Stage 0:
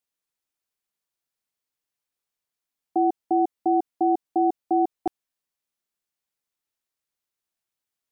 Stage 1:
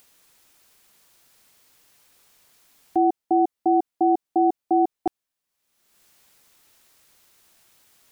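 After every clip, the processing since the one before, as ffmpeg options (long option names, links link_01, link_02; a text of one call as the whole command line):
ffmpeg -i in.wav -af "acompressor=mode=upward:threshold=-40dB:ratio=2.5,volume=2dB" out.wav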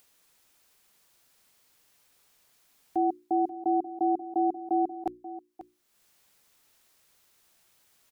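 ffmpeg -i in.wav -af "bandreject=frequency=60:width_type=h:width=6,bandreject=frequency=120:width_type=h:width=6,bandreject=frequency=180:width_type=h:width=6,bandreject=frequency=240:width_type=h:width=6,bandreject=frequency=300:width_type=h:width=6,bandreject=frequency=360:width_type=h:width=6,aecho=1:1:535:0.188,volume=-6.5dB" out.wav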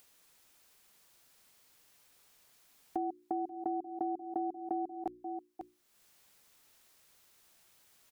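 ffmpeg -i in.wav -af "acompressor=threshold=-33dB:ratio=6" out.wav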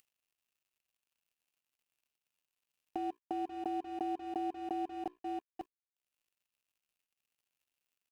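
ffmpeg -i in.wav -af "alimiter=level_in=3.5dB:limit=-24dB:level=0:latency=1:release=232,volume=-3.5dB,aeval=exprs='sgn(val(0))*max(abs(val(0))-0.00126,0)':channel_layout=same,equalizer=frequency=2700:width=3.9:gain=10.5,volume=2.5dB" out.wav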